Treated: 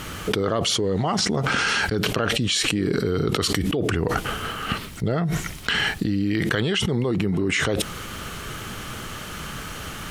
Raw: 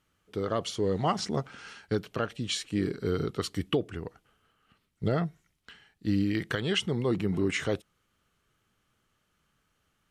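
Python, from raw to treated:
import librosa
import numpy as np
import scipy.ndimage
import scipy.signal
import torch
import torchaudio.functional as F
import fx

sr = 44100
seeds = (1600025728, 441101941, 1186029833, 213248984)

y = fx.env_flatten(x, sr, amount_pct=100)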